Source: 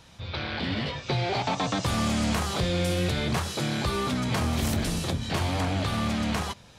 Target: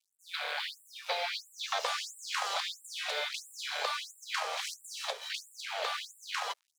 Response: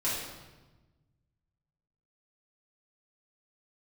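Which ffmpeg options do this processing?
-filter_complex "[0:a]acrossover=split=300 7300:gain=0.0708 1 0.158[link_01][link_02][link_03];[link_01][link_02][link_03]amix=inputs=3:normalize=0,aeval=exprs='sgn(val(0))*max(abs(val(0))-0.00335,0)':channel_layout=same,afftfilt=real='re*gte(b*sr/1024,390*pow(7400/390,0.5+0.5*sin(2*PI*1.5*pts/sr)))':imag='im*gte(b*sr/1024,390*pow(7400/390,0.5+0.5*sin(2*PI*1.5*pts/sr)))':win_size=1024:overlap=0.75"

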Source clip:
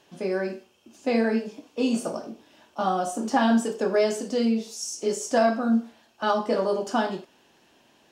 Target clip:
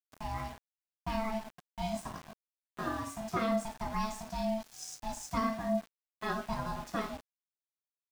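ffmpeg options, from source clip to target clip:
ffmpeg -i in.wav -af "asubboost=boost=5:cutoff=140,aeval=exprs='val(0)*sin(2*PI*440*n/s)':channel_layout=same,aeval=exprs='val(0)+0.00224*sin(2*PI*750*n/s)':channel_layout=same,aeval=exprs='val(0)*gte(abs(val(0)),0.0133)':channel_layout=same,volume=-7.5dB" out.wav

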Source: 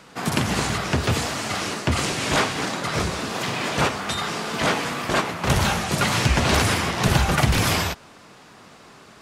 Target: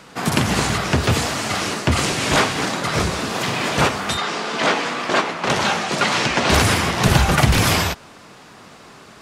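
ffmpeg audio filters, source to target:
ffmpeg -i in.wav -filter_complex "[0:a]asettb=1/sr,asplit=3[link_01][link_02][link_03];[link_01]atrim=end=4.174[link_04];[link_02]atrim=start=4.17:end=6.5,asetpts=PTS-STARTPTS,afade=type=in:duration=0.004:curve=qsin,afade=type=out:start_time=2.326:duration=0.004:curve=qsin,highpass=240,lowpass=6500[link_05];[link_03]atrim=start=6.496[link_06];[link_04][link_05]acrossfade=duration=0.004:curve1=hsin:curve2=qsin[link_07];[link_07][link_06]acrossfade=duration=0.004:curve1=qsin:curve2=hsin,volume=4dB" out.wav

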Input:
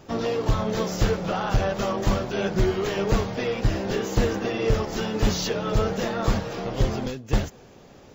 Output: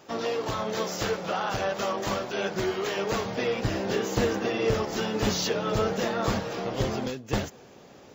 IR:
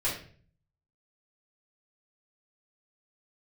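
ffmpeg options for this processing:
-af "asetnsamples=nb_out_samples=441:pad=0,asendcmd='3.25 highpass f 180',highpass=frequency=480:poles=1"

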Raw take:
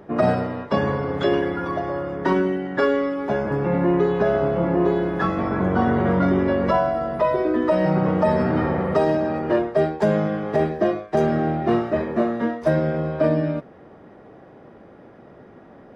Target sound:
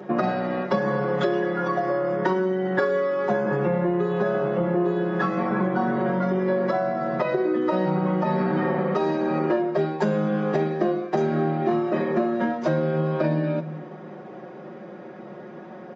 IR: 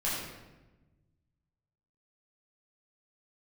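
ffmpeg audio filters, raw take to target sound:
-filter_complex "[0:a]highpass=frequency=150:width=0.5412,highpass=frequency=150:width=1.3066,aecho=1:1:5.5:0.9,acompressor=threshold=-24dB:ratio=6,asplit=2[link_01][link_02];[1:a]atrim=start_sample=2205[link_03];[link_02][link_03]afir=irnorm=-1:irlink=0,volume=-19.5dB[link_04];[link_01][link_04]amix=inputs=2:normalize=0,aresample=16000,aresample=44100,volume=3dB"

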